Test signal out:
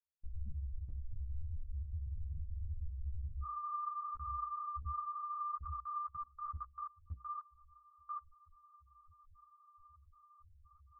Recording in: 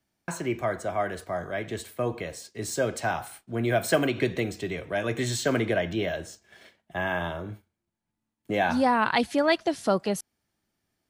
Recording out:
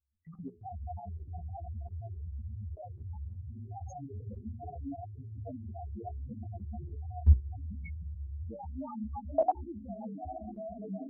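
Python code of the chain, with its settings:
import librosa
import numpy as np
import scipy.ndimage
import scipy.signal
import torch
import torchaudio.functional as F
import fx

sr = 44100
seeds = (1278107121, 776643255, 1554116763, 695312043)

p1 = fx.partial_stretch(x, sr, pct=115)
p2 = fx.peak_eq(p1, sr, hz=71.0, db=12.5, octaves=0.43)
p3 = fx.doubler(p2, sr, ms=14.0, db=-13)
p4 = fx.echo_diffused(p3, sr, ms=806, feedback_pct=70, wet_db=-4)
p5 = fx.rider(p4, sr, range_db=3, speed_s=2.0)
p6 = p4 + F.gain(torch.from_numpy(p5), 0.0).numpy()
p7 = fx.env_flanger(p6, sr, rest_ms=3.2, full_db=-19.5)
p8 = fx.spec_topn(p7, sr, count=2)
p9 = fx.high_shelf(p8, sr, hz=6000.0, db=5.0)
p10 = fx.fixed_phaser(p9, sr, hz=1400.0, stages=6)
p11 = fx.level_steps(p10, sr, step_db=23)
p12 = fx.hum_notches(p11, sr, base_hz=60, count=7)
p13 = fx.ensemble(p12, sr)
y = F.gain(torch.from_numpy(p13), 8.5).numpy()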